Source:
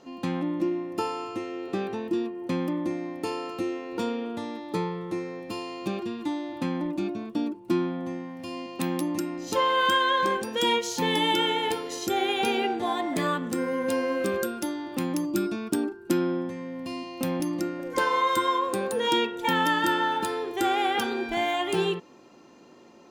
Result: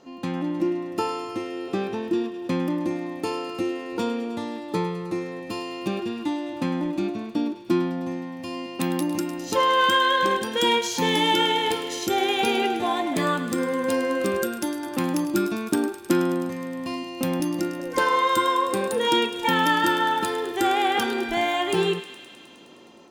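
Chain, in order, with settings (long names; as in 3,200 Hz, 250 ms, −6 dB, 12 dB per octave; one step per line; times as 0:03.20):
feedback echo with a high-pass in the loop 104 ms, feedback 80%, high-pass 820 Hz, level −12.5 dB
automatic gain control gain up to 3 dB
0:14.83–0:16.96: parametric band 1,200 Hz +4 dB 1.7 octaves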